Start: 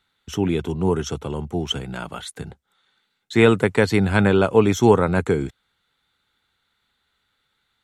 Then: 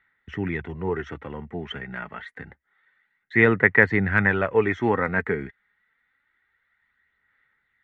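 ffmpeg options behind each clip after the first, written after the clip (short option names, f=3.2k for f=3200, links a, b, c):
-af "lowpass=f=1.9k:t=q:w=11,aphaser=in_gain=1:out_gain=1:delay=4.9:decay=0.35:speed=0.27:type=sinusoidal,volume=-8dB"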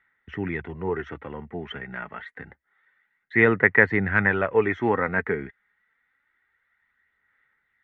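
-af "bass=f=250:g=-3,treble=f=4k:g=-10"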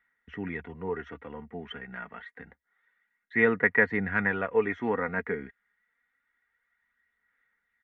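-af "aecho=1:1:4.2:0.47,volume=-6.5dB"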